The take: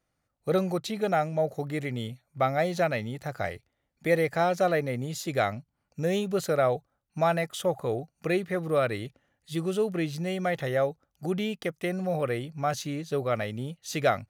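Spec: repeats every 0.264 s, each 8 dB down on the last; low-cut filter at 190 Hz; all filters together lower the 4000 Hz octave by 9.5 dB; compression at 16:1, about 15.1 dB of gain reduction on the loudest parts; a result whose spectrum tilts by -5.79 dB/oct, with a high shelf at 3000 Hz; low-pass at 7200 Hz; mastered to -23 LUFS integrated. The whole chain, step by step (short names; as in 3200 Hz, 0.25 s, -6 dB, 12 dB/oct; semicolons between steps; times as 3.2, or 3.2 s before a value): HPF 190 Hz; LPF 7200 Hz; high shelf 3000 Hz -4.5 dB; bell 4000 Hz -8.5 dB; compressor 16:1, threshold -35 dBFS; feedback echo 0.264 s, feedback 40%, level -8 dB; gain +17.5 dB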